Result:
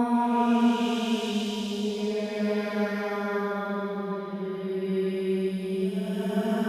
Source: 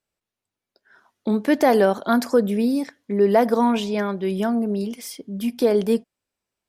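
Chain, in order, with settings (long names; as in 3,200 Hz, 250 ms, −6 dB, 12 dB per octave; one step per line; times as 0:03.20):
extreme stretch with random phases 8.6×, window 0.25 s, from 0:03.66
feedback delay with all-pass diffusion 453 ms, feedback 59%, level −14.5 dB
level −5 dB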